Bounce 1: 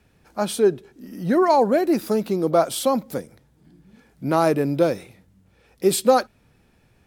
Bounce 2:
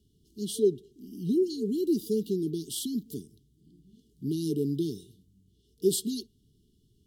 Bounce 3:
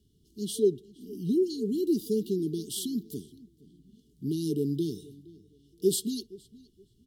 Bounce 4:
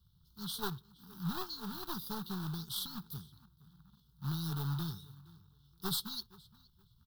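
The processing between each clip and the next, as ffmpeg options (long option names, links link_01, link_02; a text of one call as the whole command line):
ffmpeg -i in.wav -af "afftfilt=real='re*(1-between(b*sr/4096,450,2800))':imag='im*(1-between(b*sr/4096,450,2800))':win_size=4096:overlap=0.75,equalizer=frequency=2200:width=5:gain=-9.5,volume=-6dB" out.wav
ffmpeg -i in.wav -filter_complex "[0:a]asplit=2[link_01][link_02];[link_02]adelay=469,lowpass=frequency=2900:poles=1,volume=-21dB,asplit=2[link_03][link_04];[link_04]adelay=469,lowpass=frequency=2900:poles=1,volume=0.25[link_05];[link_01][link_03][link_05]amix=inputs=3:normalize=0" out.wav
ffmpeg -i in.wav -af "acrusher=bits=4:mode=log:mix=0:aa=0.000001,aeval=exprs='0.2*(cos(1*acos(clip(val(0)/0.2,-1,1)))-cos(1*PI/2))+0.00794*(cos(4*acos(clip(val(0)/0.2,-1,1)))-cos(4*PI/2))':channel_layout=same,firequalizer=gain_entry='entry(160,0);entry(260,-23);entry(550,-21);entry(860,6);entry(1400,8);entry(2100,-22);entry(3700,3);entry(7100,-14);entry(15000,4)':delay=0.05:min_phase=1" out.wav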